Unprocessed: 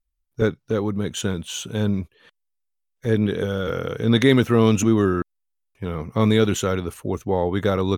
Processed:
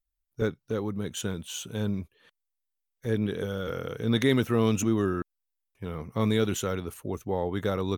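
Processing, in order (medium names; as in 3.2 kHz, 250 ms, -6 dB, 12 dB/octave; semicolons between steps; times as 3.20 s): treble shelf 11 kHz +10 dB; trim -7.5 dB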